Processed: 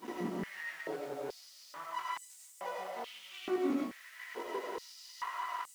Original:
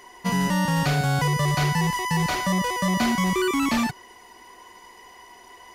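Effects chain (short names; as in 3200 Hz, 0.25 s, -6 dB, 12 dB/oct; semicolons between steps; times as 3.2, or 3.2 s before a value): tilt -4 dB/oct; compressor 4:1, threshold -39 dBFS, peak gain reduction 23.5 dB; limiter -32 dBFS, peak gain reduction 6.5 dB; grains 0.156 s, grains 5.8/s, pitch spread up and down by 0 st; chorus 0.93 Hz, delay 16.5 ms, depth 3.6 ms; half-wave rectifier; added noise pink -72 dBFS; soft clip -37.5 dBFS, distortion -18 dB; reverb RT60 0.40 s, pre-delay 45 ms, DRR -2.5 dB; stepped high-pass 2.3 Hz 260–7900 Hz; gain +11.5 dB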